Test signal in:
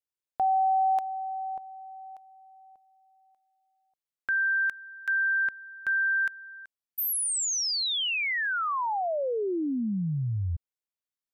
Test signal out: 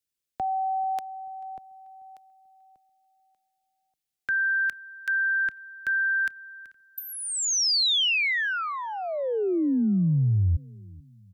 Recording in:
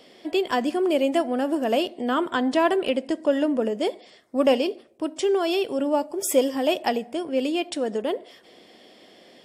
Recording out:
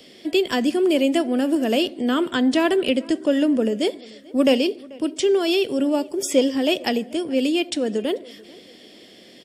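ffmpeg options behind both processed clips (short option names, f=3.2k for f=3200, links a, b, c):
-filter_complex "[0:a]equalizer=f=900:t=o:w=1.7:g=-12,asplit=2[a][b];[b]adelay=438,lowpass=f=2.8k:p=1,volume=-23dB,asplit=2[c][d];[d]adelay=438,lowpass=f=2.8k:p=1,volume=0.4,asplit=2[e][f];[f]adelay=438,lowpass=f=2.8k:p=1,volume=0.4[g];[a][c][e][g]amix=inputs=4:normalize=0,acrossover=split=170|970|7000[h][i][j][k];[k]acompressor=threshold=-52dB:ratio=6:attack=51:release=610:detection=peak[l];[h][i][j][l]amix=inputs=4:normalize=0,volume=7.5dB"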